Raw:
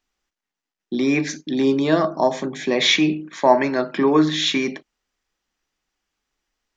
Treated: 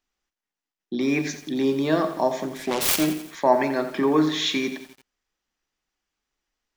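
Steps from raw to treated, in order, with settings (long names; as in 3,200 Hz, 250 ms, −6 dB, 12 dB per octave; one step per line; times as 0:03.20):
0:02.47–0:03.20: phase distortion by the signal itself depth 0.69 ms
feedback echo at a low word length 87 ms, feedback 55%, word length 6 bits, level −11 dB
level −4 dB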